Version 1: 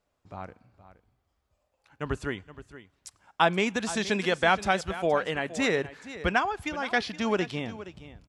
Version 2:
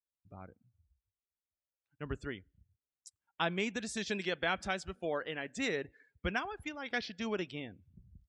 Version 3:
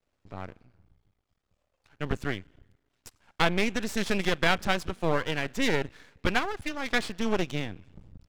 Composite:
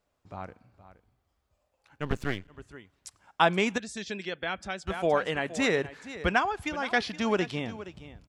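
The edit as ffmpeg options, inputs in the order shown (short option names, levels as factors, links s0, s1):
-filter_complex "[0:a]asplit=3[s0][s1][s2];[s0]atrim=end=2.12[s3];[2:a]atrim=start=1.96:end=2.61[s4];[s1]atrim=start=2.45:end=3.782[s5];[1:a]atrim=start=3.778:end=4.872[s6];[s2]atrim=start=4.868[s7];[s3][s4]acrossfade=d=0.16:c1=tri:c2=tri[s8];[s8][s5]acrossfade=d=0.16:c1=tri:c2=tri[s9];[s9][s6]acrossfade=d=0.004:c1=hsin:c2=hsin[s10];[s10][s7]acrossfade=d=0.004:c1=hsin:c2=hsin"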